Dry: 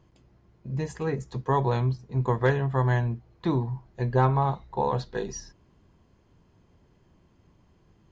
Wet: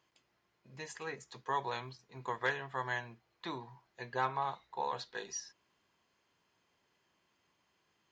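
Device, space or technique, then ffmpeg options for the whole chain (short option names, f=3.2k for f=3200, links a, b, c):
filter by subtraction: -filter_complex "[0:a]asplit=2[a][b];[b]lowpass=2.4k,volume=-1[c];[a][c]amix=inputs=2:normalize=0,volume=-3dB"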